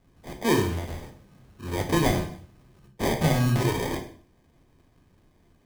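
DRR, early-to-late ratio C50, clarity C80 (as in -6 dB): 3.5 dB, 9.0 dB, 13.0 dB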